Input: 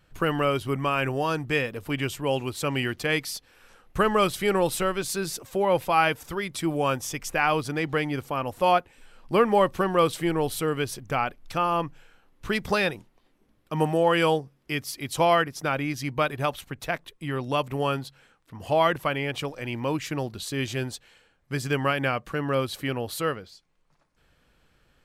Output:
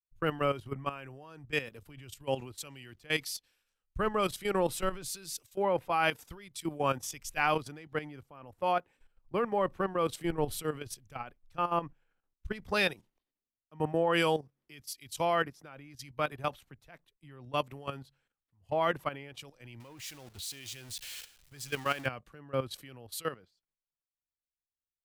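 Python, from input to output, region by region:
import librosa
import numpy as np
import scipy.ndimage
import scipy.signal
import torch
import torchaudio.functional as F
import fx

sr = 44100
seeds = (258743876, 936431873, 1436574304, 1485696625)

y = fx.chain(x, sr, fx.zero_step(step_db=-29.5),
    fx.low_shelf(hz=370.0, db=-7.0), at=(19.8, 22.06))
y = fx.level_steps(y, sr, step_db=12)
y = fx.band_widen(y, sr, depth_pct=100)
y = y * librosa.db_to_amplitude(-5.0)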